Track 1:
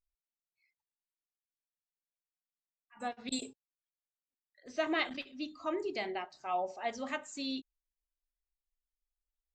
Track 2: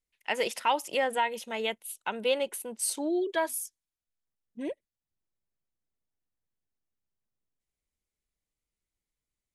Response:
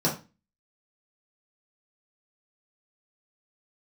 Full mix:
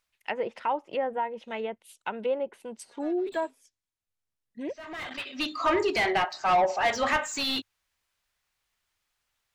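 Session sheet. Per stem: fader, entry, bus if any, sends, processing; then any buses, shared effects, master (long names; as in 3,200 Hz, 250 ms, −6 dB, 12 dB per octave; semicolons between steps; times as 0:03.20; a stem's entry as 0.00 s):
+1.0 dB, 0.00 s, no send, tilt shelving filter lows −7 dB, about 790 Hz; mid-hump overdrive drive 28 dB, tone 1,300 Hz, clips at −13 dBFS; automatic ducking −23 dB, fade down 0.50 s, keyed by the second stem
0.0 dB, 0.00 s, no send, treble cut that deepens with the level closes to 1,100 Hz, closed at −26.5 dBFS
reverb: not used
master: parametric band 100 Hz +8 dB 0.49 octaves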